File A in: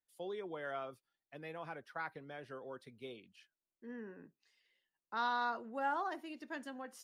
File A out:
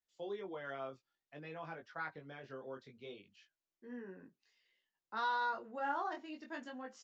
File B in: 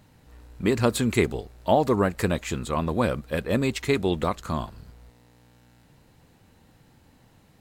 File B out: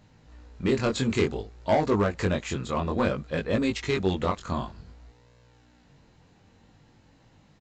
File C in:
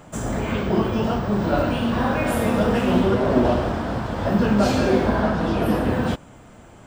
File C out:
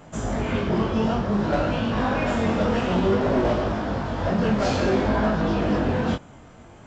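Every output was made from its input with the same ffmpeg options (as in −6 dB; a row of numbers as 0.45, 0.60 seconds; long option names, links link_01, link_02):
-af "aresample=16000,asoftclip=type=hard:threshold=-16dB,aresample=44100,flanger=delay=18.5:depth=4.1:speed=0.56,volume=2dB"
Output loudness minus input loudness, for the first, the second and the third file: −0.5, −2.0, −2.0 LU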